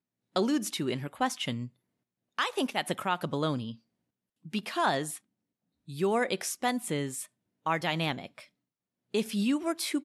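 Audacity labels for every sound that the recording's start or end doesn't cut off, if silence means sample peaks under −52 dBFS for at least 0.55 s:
2.380000	3.760000	sound
4.450000	5.180000	sound
5.880000	8.460000	sound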